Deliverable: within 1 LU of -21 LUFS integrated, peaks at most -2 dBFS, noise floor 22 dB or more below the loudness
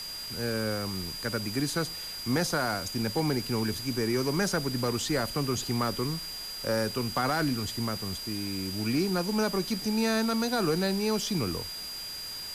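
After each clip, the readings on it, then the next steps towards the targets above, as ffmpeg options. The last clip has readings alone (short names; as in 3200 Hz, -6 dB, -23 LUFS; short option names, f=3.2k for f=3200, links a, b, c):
steady tone 4800 Hz; tone level -37 dBFS; noise floor -39 dBFS; noise floor target -52 dBFS; loudness -29.5 LUFS; peak -18.0 dBFS; loudness target -21.0 LUFS
-> -af "bandreject=f=4.8k:w=30"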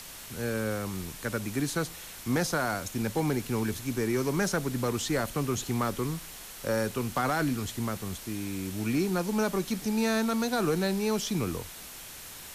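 steady tone none; noise floor -44 dBFS; noise floor target -52 dBFS
-> -af "afftdn=nr=8:nf=-44"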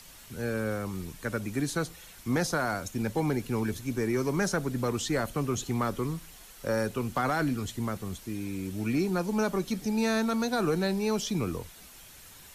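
noise floor -51 dBFS; noise floor target -53 dBFS
-> -af "afftdn=nr=6:nf=-51"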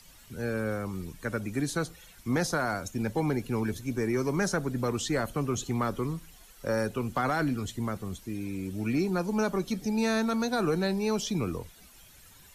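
noise floor -54 dBFS; loudness -30.5 LUFS; peak -19.0 dBFS; loudness target -21.0 LUFS
-> -af "volume=9.5dB"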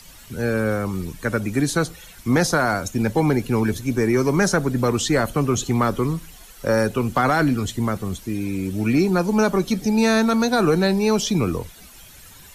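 loudness -21.0 LUFS; peak -9.5 dBFS; noise floor -45 dBFS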